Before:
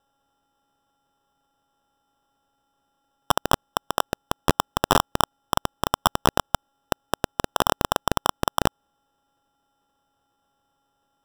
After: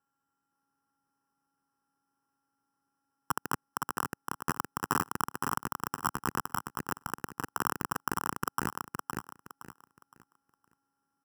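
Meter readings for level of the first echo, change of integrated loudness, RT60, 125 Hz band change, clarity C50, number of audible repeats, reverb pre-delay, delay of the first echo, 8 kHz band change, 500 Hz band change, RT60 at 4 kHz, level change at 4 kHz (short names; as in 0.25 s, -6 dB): -4.0 dB, -9.5 dB, none, -9.5 dB, none, 3, none, 0.515 s, -8.0 dB, -16.0 dB, none, -17.5 dB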